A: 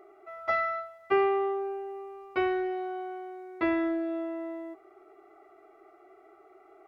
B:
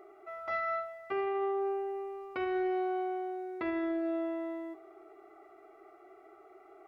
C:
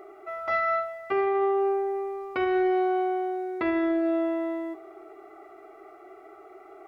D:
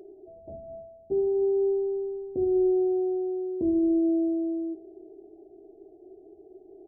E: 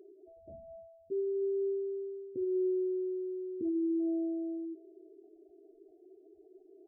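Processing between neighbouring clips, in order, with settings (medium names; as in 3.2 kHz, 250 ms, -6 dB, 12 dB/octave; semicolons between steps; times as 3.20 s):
peak limiter -27 dBFS, peak gain reduction 11.5 dB; Schroeder reverb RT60 2.4 s, combs from 27 ms, DRR 16.5 dB
de-hum 174.7 Hz, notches 40; trim +8 dB
Gaussian low-pass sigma 22 samples; trim +7.5 dB
spectral gate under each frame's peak -20 dB strong; trim -8 dB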